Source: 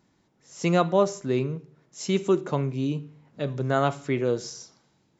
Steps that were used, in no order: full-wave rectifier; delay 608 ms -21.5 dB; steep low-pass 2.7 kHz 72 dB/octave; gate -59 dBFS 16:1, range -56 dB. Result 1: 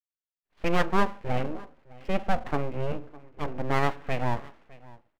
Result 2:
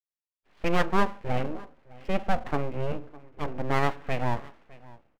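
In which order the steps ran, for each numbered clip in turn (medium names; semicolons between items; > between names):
steep low-pass > gate > delay > full-wave rectifier; delay > gate > steep low-pass > full-wave rectifier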